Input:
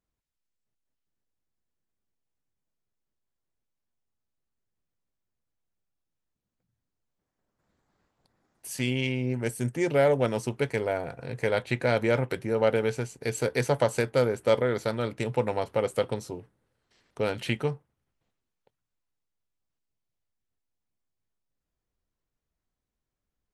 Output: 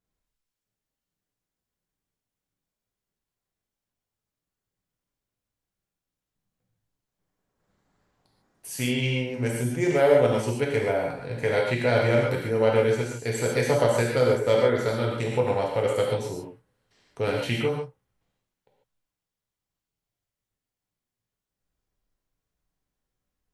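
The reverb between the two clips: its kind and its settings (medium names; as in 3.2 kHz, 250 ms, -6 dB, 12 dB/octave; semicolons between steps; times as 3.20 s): gated-style reverb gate 170 ms flat, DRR -2 dB; trim -1 dB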